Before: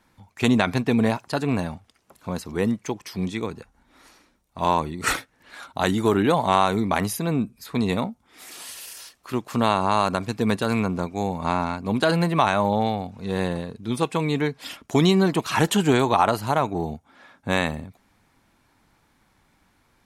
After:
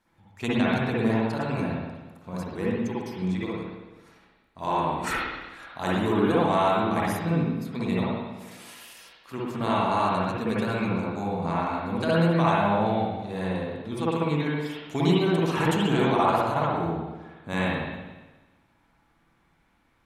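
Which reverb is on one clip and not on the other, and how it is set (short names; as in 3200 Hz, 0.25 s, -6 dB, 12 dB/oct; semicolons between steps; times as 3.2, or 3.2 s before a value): spring tank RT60 1.2 s, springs 54/60 ms, chirp 70 ms, DRR -7 dB; gain -10.5 dB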